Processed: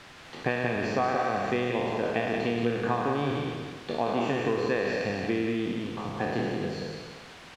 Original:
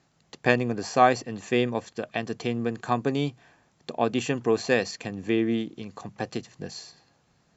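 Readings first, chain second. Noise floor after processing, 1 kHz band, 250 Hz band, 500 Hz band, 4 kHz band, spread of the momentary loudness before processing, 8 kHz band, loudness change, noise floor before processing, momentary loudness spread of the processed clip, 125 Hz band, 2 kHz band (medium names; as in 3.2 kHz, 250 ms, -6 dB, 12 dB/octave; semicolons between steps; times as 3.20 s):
-48 dBFS, -2.5 dB, -1.5 dB, -1.0 dB, -2.5 dB, 17 LU, no reading, -2.5 dB, -67 dBFS, 8 LU, -0.5 dB, -1.0 dB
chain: spectral sustain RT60 1.36 s; compression, threshold -24 dBFS, peak gain reduction 12 dB; added noise white -41 dBFS; low-pass 2.9 kHz 12 dB/octave; delay 179 ms -5 dB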